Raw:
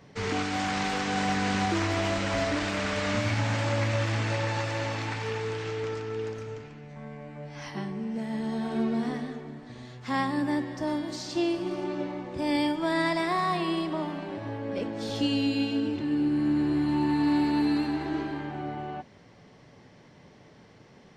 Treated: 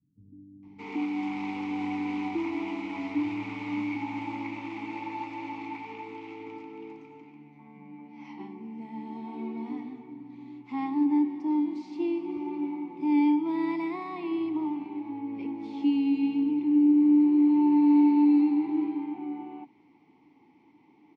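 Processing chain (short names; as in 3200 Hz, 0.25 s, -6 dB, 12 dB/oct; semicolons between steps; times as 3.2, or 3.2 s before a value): vowel filter u; bands offset in time lows, highs 0.63 s, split 160 Hz; gain +6.5 dB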